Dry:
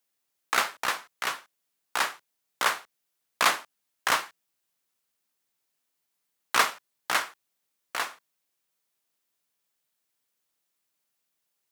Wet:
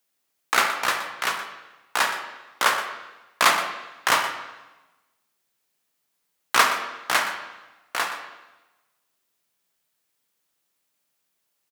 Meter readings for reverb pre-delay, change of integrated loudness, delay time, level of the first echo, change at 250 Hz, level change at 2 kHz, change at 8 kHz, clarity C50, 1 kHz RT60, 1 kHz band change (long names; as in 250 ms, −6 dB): 13 ms, +4.5 dB, 121 ms, −12.5 dB, +5.5 dB, +5.5 dB, +4.0 dB, 6.5 dB, 1.1 s, +5.5 dB